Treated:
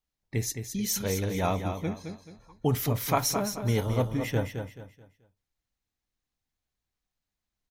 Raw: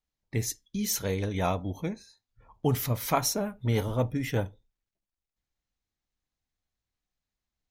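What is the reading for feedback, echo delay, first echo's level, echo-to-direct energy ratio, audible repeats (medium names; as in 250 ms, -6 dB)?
32%, 216 ms, -7.5 dB, -7.0 dB, 3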